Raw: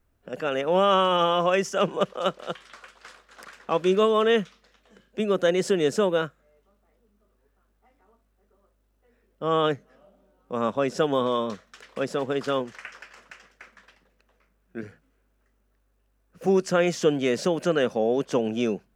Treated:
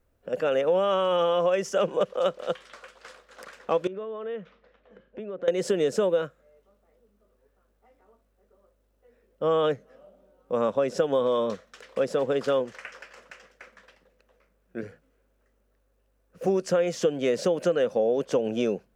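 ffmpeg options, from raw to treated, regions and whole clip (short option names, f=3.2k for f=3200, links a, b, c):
-filter_complex "[0:a]asettb=1/sr,asplit=3[a][b][c];[a]atrim=end=3.874[d];[b]atrim=start=3.87:end=5.48,asetpts=PTS-STARTPTS,afade=t=in:d=0.004:c=qsin,afade=t=out:st=1.606:d=0.004:c=qsin,lowpass=2.2k,acompressor=threshold=-36dB:ratio=5:attack=3.2:release=140:knee=1:detection=peak[e];[c]atrim=start=5.476[f];[d][e]acrossfade=d=0.004:c1=hsin:c2=qsin[g];[g][f]acrossfade=d=0.004:c1=qsin:c2=hsin,equalizer=f=520:t=o:w=0.48:g=9,acompressor=threshold=-19dB:ratio=6,volume=-1dB"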